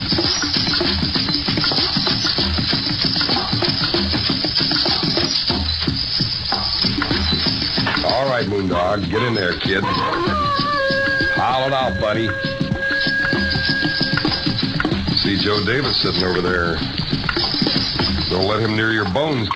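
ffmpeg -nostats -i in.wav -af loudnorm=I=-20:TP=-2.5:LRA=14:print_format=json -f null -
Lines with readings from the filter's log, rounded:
"input_i" : "-17.6",
"input_tp" : "-3.0",
"input_lra" : "1.7",
"input_thresh" : "-27.6",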